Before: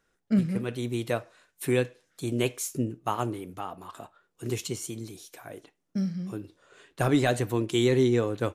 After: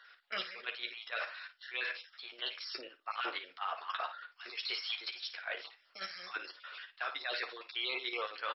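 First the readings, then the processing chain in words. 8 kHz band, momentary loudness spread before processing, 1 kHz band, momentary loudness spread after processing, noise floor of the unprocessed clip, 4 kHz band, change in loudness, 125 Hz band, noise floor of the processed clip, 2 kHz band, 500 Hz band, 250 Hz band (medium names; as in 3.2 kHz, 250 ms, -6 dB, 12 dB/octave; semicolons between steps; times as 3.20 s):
under -30 dB, 19 LU, -5.5 dB, 8 LU, -77 dBFS, +1.5 dB, -11.0 dB, under -40 dB, -70 dBFS, -0.5 dB, -19.0 dB, -31.0 dB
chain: random holes in the spectrogram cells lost 21%; high-pass 620 Hz 24 dB/octave; high-order bell 2.7 kHz +12.5 dB 2.6 oct; reverse; compression 8:1, threshold -40 dBFS, peak gain reduction 24 dB; reverse; transient shaper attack -1 dB, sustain +6 dB; level held to a coarse grid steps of 11 dB; early reflections 11 ms -6.5 dB, 56 ms -12 dB; trim +6.5 dB; MP2 48 kbps 44.1 kHz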